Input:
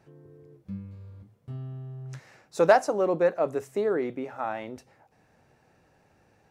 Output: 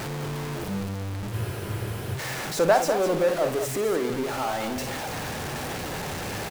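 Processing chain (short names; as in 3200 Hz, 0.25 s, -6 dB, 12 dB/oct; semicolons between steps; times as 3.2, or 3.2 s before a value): zero-crossing step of -24.5 dBFS; loudspeakers at several distances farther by 19 m -10 dB, 70 m -9 dB; spectral freeze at 1.34, 0.80 s; gain -2.5 dB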